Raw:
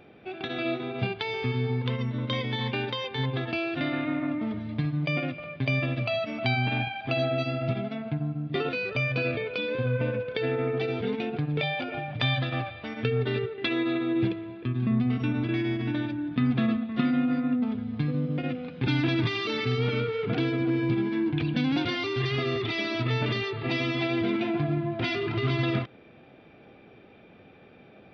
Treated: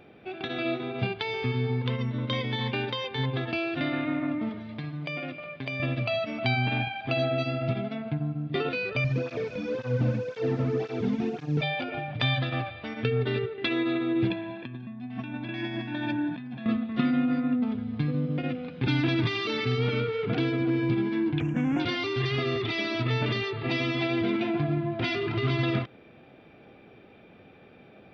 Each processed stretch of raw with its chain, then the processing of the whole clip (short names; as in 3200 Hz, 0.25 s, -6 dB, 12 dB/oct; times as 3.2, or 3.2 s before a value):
4.49–5.8 low shelf 150 Hz -11.5 dB + notches 60/120/180/240/300/360/420/480/540 Hz + compressor 2.5:1, threshold -31 dBFS
9.04–11.62 delta modulation 32 kbps, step -46 dBFS + low shelf 270 Hz +9.5 dB + tape flanging out of phase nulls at 1.9 Hz, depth 2.7 ms
14.3–16.66 comb 1.2 ms, depth 79% + negative-ratio compressor -31 dBFS + BPF 200–5300 Hz
21.4–21.8 CVSD 32 kbps + Butterworth band-stop 4300 Hz, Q 0.77
whole clip: dry